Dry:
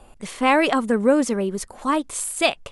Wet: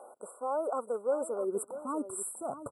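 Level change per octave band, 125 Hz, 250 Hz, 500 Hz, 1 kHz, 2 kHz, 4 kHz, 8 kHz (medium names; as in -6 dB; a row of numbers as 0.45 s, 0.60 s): no reading, -18.5 dB, -10.0 dB, -14.0 dB, -30.5 dB, under -40 dB, -11.0 dB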